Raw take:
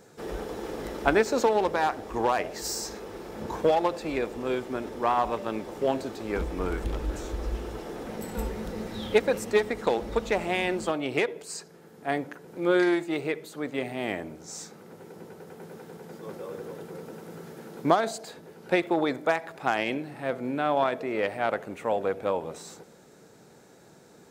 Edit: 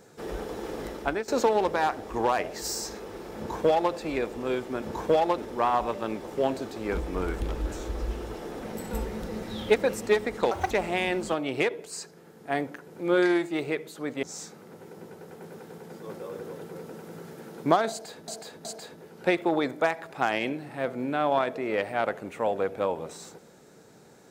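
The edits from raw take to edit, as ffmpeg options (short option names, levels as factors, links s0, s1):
-filter_complex "[0:a]asplit=9[s0][s1][s2][s3][s4][s5][s6][s7][s8];[s0]atrim=end=1.28,asetpts=PTS-STARTPTS,afade=t=out:st=0.83:d=0.45:silence=0.177828[s9];[s1]atrim=start=1.28:end=4.822,asetpts=PTS-STARTPTS,afade=t=in:d=0.004:c=hsin:silence=0.177828[s10];[s2]atrim=start=3.368:end=3.932[s11];[s3]atrim=start=4.818:end=9.954[s12];[s4]atrim=start=9.95:end=10.28,asetpts=PTS-STARTPTS,asetrate=73206,aresample=44100[s13];[s5]atrim=start=10.276:end=13.802[s14];[s6]atrim=start=14.418:end=18.472[s15];[s7]atrim=start=18.098:end=18.472[s16];[s8]atrim=start=18.098[s17];[s9][s10]concat=n=2:v=0:a=1[s18];[s18][s11]acrossfade=d=0.004:c1=hsin:c2=hsin[s19];[s19][s12]acrossfade=d=0.004:c1=hsin:c2=hsin[s20];[s20][s13]acrossfade=d=0.004:c1=hsin:c2=hsin[s21];[s21][s14]acrossfade=d=0.004:c1=hsin:c2=hsin[s22];[s22][s15]acrossfade=d=0.004:c1=hsin:c2=hsin[s23];[s23][s16]acrossfade=d=0.004:c1=hsin:c2=hsin[s24];[s24][s17]acrossfade=d=0.004:c1=hsin:c2=hsin"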